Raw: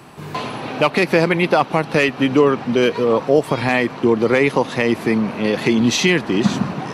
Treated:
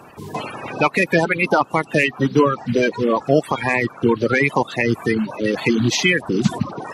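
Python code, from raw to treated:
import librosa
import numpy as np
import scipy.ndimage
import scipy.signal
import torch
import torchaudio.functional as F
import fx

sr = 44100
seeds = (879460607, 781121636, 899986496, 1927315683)

y = fx.spec_quant(x, sr, step_db=30)
y = fx.dereverb_blind(y, sr, rt60_s=0.89)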